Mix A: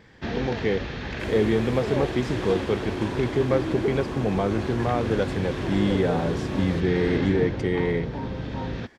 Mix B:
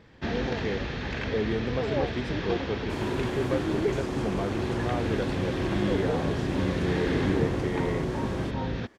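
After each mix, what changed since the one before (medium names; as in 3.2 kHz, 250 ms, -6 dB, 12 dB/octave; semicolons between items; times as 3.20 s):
speech -7.0 dB; second sound: entry +1.70 s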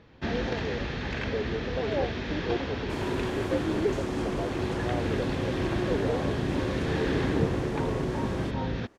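speech: add band-pass filter 580 Hz, Q 1.6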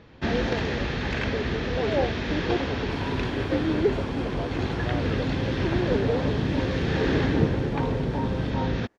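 first sound +4.5 dB; second sound -10.5 dB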